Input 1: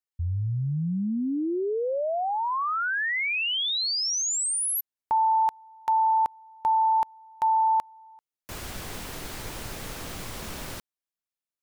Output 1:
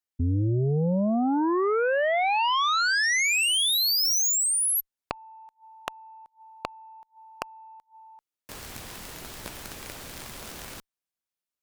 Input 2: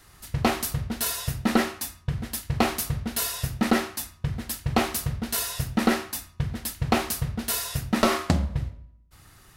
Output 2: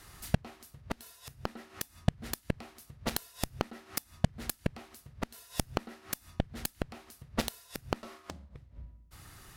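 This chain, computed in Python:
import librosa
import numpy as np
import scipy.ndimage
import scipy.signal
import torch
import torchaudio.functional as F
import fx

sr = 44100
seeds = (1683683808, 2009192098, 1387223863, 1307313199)

y = fx.gate_flip(x, sr, shuts_db=-20.0, range_db=-26)
y = fx.cheby_harmonics(y, sr, harmonics=(2, 5, 7, 8), levels_db=(-21, -42, -13, -45), full_scale_db=-16.5)
y = y * 10.0 ** (6.0 / 20.0)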